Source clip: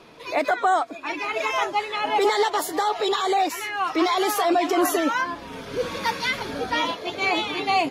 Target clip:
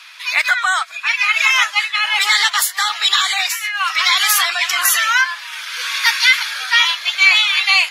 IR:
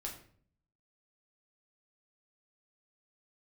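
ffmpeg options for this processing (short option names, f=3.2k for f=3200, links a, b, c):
-filter_complex "[0:a]asplit=3[a][b][c];[a]afade=t=out:st=1.74:d=0.02[d];[b]agate=range=-33dB:threshold=-24dB:ratio=3:detection=peak,afade=t=in:st=1.74:d=0.02,afade=t=out:st=3.8:d=0.02[e];[c]afade=t=in:st=3.8:d=0.02[f];[d][e][f]amix=inputs=3:normalize=0,highpass=f=1.5k:w=0.5412,highpass=f=1.5k:w=1.3066,alimiter=level_in=16.5dB:limit=-1dB:release=50:level=0:latency=1,volume=-1dB"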